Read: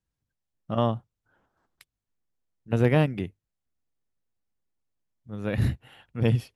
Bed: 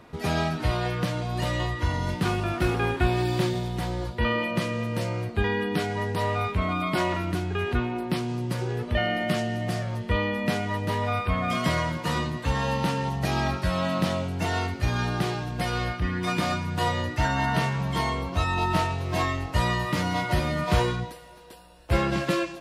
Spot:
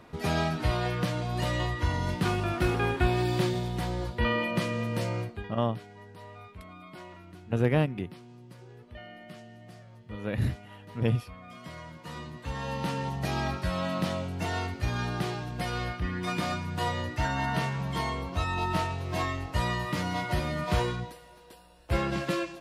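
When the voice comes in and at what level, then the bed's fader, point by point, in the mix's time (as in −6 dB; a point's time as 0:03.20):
4.80 s, −3.5 dB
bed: 0:05.21 −2 dB
0:05.51 −20.5 dB
0:11.54 −20.5 dB
0:12.97 −4.5 dB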